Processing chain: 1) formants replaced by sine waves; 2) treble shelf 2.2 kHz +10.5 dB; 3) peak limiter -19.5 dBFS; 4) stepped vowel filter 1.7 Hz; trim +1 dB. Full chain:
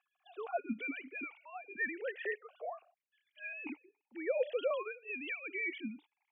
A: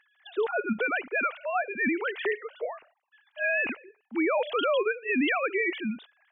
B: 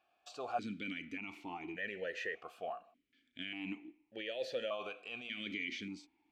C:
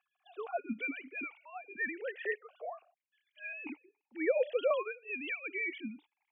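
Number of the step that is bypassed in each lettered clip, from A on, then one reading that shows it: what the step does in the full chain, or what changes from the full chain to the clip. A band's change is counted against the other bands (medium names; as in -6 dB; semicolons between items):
4, 500 Hz band -4.0 dB; 1, 1 kHz band +4.5 dB; 3, momentary loudness spread change +3 LU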